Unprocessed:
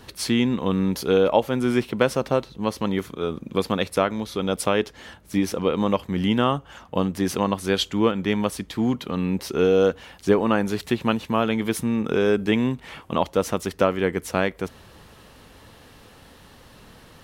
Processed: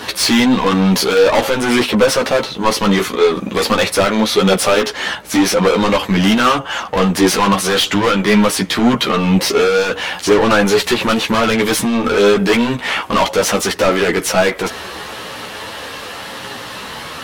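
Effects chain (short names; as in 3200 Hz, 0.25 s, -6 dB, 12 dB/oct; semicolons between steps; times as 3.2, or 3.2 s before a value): overdrive pedal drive 34 dB, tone 5400 Hz, clips at -1.5 dBFS; chorus voices 6, 0.46 Hz, delay 13 ms, depth 3.9 ms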